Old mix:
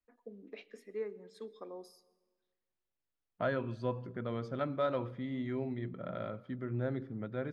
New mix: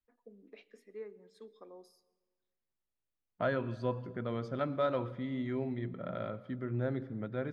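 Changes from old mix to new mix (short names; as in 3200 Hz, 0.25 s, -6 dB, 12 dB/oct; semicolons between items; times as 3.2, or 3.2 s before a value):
first voice -6.0 dB; second voice: send +9.0 dB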